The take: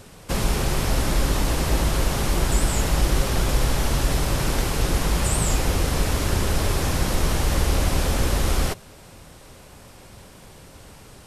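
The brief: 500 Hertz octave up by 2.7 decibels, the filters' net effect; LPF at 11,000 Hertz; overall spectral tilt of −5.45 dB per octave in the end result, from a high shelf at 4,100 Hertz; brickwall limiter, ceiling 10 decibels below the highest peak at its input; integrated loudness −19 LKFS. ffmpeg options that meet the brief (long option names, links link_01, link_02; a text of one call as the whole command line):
ffmpeg -i in.wav -af "lowpass=11000,equalizer=frequency=500:width_type=o:gain=3.5,highshelf=frequency=4100:gain=-8.5,volume=9dB,alimiter=limit=-8.5dB:level=0:latency=1" out.wav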